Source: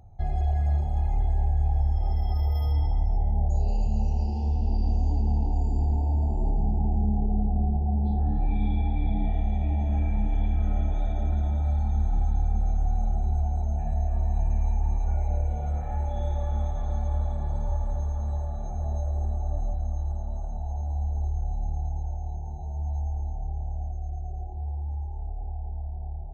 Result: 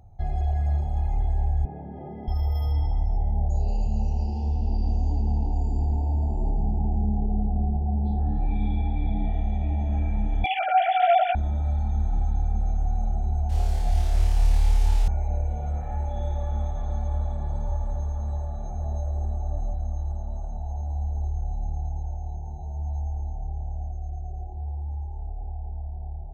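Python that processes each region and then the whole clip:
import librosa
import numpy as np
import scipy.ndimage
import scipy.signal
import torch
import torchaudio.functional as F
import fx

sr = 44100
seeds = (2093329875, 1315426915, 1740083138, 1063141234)

y = fx.chain(x, sr, fx.cabinet(low_hz=140.0, low_slope=24, high_hz=2000.0, hz=(170.0, 270.0, 410.0, 770.0, 1100.0), db=(3, 9, 5, -6, -9)),
    fx.env_flatten(amount_pct=70), at=(1.65, 2.28))
y = fx.chain(y, sr, fx.sine_speech(),
    fx.doubler(ms=16.0, db=-4.0),
    fx.small_body(hz=(320.0, 1400.0), ring_ms=45, db=12), at=(10.44, 11.35))
y = fx.chain(y, sr, fx.mod_noise(seeds[0], snr_db=20),
    fx.air_absorb(metres=58.0),
    fx.room_flutter(wall_m=4.3, rt60_s=0.64), at=(13.49, 15.08))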